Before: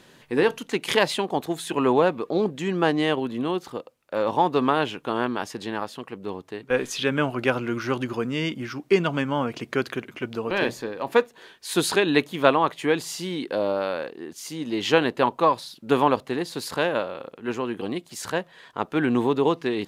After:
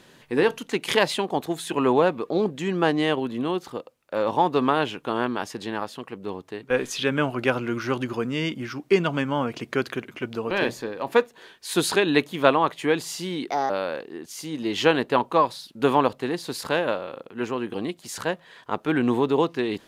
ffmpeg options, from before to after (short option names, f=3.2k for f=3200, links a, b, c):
-filter_complex "[0:a]asplit=3[a][b][c];[a]atrim=end=13.504[d];[b]atrim=start=13.5:end=13.77,asetpts=PTS-STARTPTS,asetrate=60417,aresample=44100,atrim=end_sample=8691,asetpts=PTS-STARTPTS[e];[c]atrim=start=13.766[f];[d][e]acrossfade=d=0.004:c1=hsin:c2=hsin[g];[g][f]acrossfade=d=0.004:c1=hsin:c2=hsin"